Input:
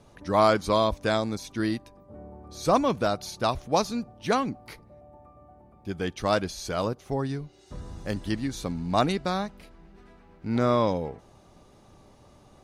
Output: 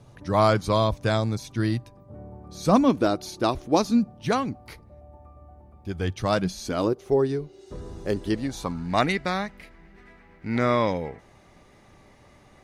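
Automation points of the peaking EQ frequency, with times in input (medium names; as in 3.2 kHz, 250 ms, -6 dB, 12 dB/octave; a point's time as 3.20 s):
peaking EQ +12.5 dB 0.58 oct
2.36 s 120 Hz
3.04 s 330 Hz
3.73 s 330 Hz
4.63 s 72 Hz
5.92 s 72 Hz
6.97 s 400 Hz
8.30 s 400 Hz
8.95 s 2 kHz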